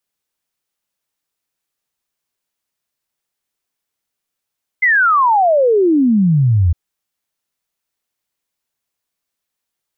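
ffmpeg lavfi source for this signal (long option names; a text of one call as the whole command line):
ffmpeg -f lavfi -i "aevalsrc='0.355*clip(min(t,1.91-t)/0.01,0,1)*sin(2*PI*2100*1.91/log(80/2100)*(exp(log(80/2100)*t/1.91)-1))':duration=1.91:sample_rate=44100" out.wav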